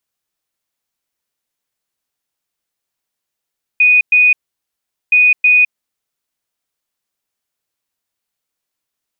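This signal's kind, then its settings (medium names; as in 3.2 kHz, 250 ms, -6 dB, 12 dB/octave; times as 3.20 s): beep pattern sine 2.48 kHz, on 0.21 s, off 0.11 s, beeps 2, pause 0.79 s, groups 2, -6 dBFS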